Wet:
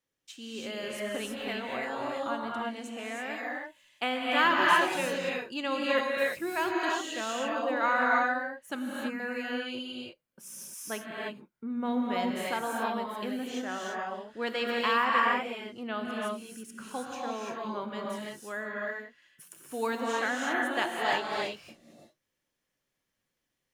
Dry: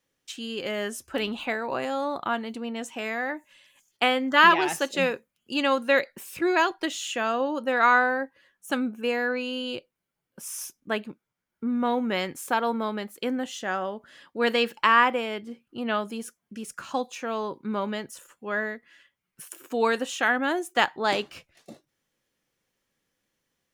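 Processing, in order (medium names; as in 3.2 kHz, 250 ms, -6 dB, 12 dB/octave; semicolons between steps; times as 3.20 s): 8.75–9.20 s: static phaser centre 1.5 kHz, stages 4; gated-style reverb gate 360 ms rising, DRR -3 dB; trim -9 dB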